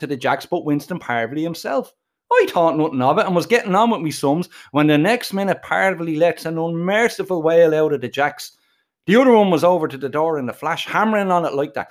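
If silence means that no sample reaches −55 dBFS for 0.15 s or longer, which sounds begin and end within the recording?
0:02.30–0:08.80

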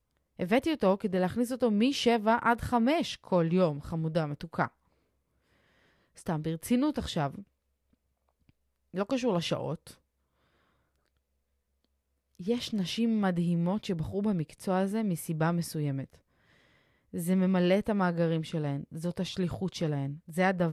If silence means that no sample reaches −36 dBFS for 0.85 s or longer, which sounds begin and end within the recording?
0:06.27–0:07.39
0:08.94–0:09.91
0:12.40–0:16.04

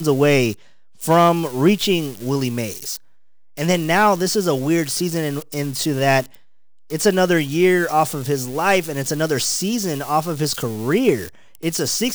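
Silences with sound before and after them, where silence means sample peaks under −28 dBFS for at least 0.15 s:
0:00.54–0:01.01
0:02.97–0:03.57
0:06.35–0:06.90
0:11.29–0:11.55

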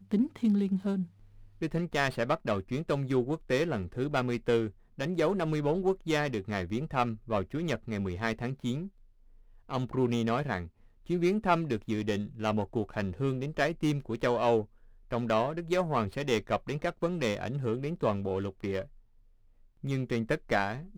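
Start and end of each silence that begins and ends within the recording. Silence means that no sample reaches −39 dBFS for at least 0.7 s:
0:08.87–0:09.69
0:18.84–0:19.84

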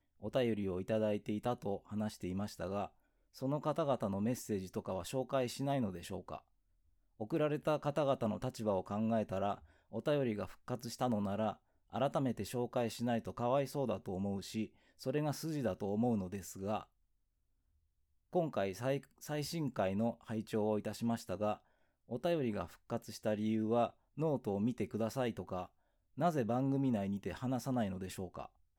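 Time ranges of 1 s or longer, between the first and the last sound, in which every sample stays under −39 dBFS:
0:16.81–0:18.35

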